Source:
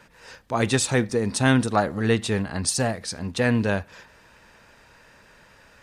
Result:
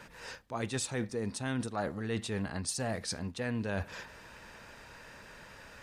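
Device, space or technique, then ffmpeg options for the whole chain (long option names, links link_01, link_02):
compression on the reversed sound: -af "areverse,acompressor=threshold=-35dB:ratio=5,areverse,volume=1.5dB"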